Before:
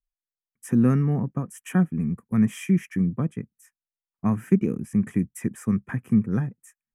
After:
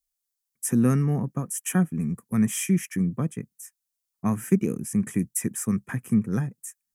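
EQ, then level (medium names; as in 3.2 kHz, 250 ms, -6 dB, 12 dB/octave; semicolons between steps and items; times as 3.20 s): tone controls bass -6 dB, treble +14 dB; peaking EQ 140 Hz +4.5 dB 1.1 oct; 0.0 dB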